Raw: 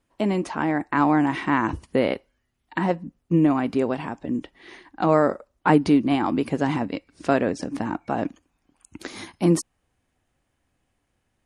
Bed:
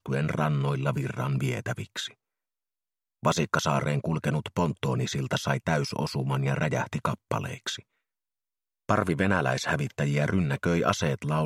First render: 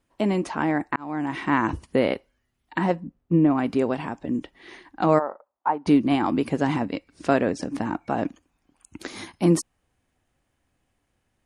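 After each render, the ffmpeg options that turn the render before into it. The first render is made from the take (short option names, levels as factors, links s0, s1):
-filter_complex "[0:a]asplit=3[s0][s1][s2];[s0]afade=t=out:st=2.99:d=0.02[s3];[s1]lowpass=f=1500:p=1,afade=t=in:st=2.99:d=0.02,afade=t=out:st=3.57:d=0.02[s4];[s2]afade=t=in:st=3.57:d=0.02[s5];[s3][s4][s5]amix=inputs=3:normalize=0,asplit=3[s6][s7][s8];[s6]afade=t=out:st=5.18:d=0.02[s9];[s7]bandpass=f=880:t=q:w=2.9,afade=t=in:st=5.18:d=0.02,afade=t=out:st=5.86:d=0.02[s10];[s8]afade=t=in:st=5.86:d=0.02[s11];[s9][s10][s11]amix=inputs=3:normalize=0,asplit=2[s12][s13];[s12]atrim=end=0.96,asetpts=PTS-STARTPTS,afade=t=out:st=0.956:d=0.004:c=hsin[s14];[s13]atrim=start=0.96,asetpts=PTS-STARTPTS,afade=t=in:d=0.58[s15];[s14][s15]concat=n=2:v=0:a=1"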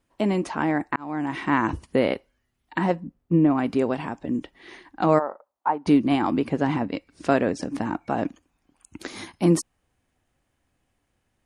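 -filter_complex "[0:a]asettb=1/sr,asplit=3[s0][s1][s2];[s0]atrim=end=6.394[s3];[s1]atrim=start=6.39:end=6.93,asetpts=PTS-STARTPTS,afade=t=in:d=0.004:c=qsin,afade=t=out:st=0.536:d=0.004:c=qsin,lowpass=f=3500:p=1[s4];[s2]atrim=start=6.926[s5];[s3][s4]acrossfade=d=0.004:c1=hsin:c2=qsin[s6];[s6][s5]acrossfade=d=0.004:c1=qsin:c2=hsin"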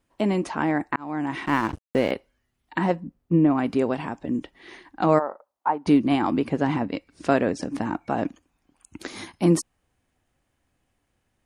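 -filter_complex "[0:a]asettb=1/sr,asplit=3[s0][s1][s2];[s0]atrim=end=1.464[s3];[s1]atrim=start=1.46:end=2.11,asetpts=PTS-STARTPTS,afade=t=in:d=0.004:c=qsin,afade=t=out:st=0.646:d=0.004:c=qsin,aeval=exprs='sgn(val(0))*max(abs(val(0))-0.0188,0)':c=same[s4];[s2]atrim=start=2.106[s5];[s3][s4]acrossfade=d=0.004:c1=hsin:c2=qsin[s6];[s6][s5]acrossfade=d=0.004:c1=qsin:c2=hsin"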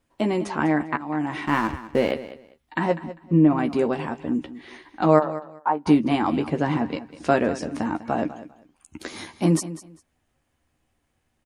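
-filter_complex "[0:a]asplit=2[s0][s1];[s1]adelay=13,volume=0.447[s2];[s0][s2]amix=inputs=2:normalize=0,aecho=1:1:199|398:0.178|0.0356"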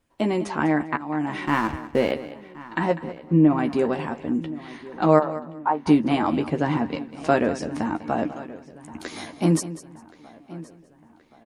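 -filter_complex "[0:a]asplit=2[s0][s1];[s1]adelay=1074,lowpass=f=3900:p=1,volume=0.126,asplit=2[s2][s3];[s3]adelay=1074,lowpass=f=3900:p=1,volume=0.52,asplit=2[s4][s5];[s5]adelay=1074,lowpass=f=3900:p=1,volume=0.52,asplit=2[s6][s7];[s7]adelay=1074,lowpass=f=3900:p=1,volume=0.52[s8];[s0][s2][s4][s6][s8]amix=inputs=5:normalize=0"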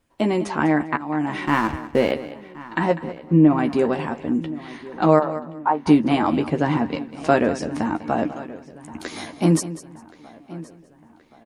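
-af "volume=1.33,alimiter=limit=0.794:level=0:latency=1"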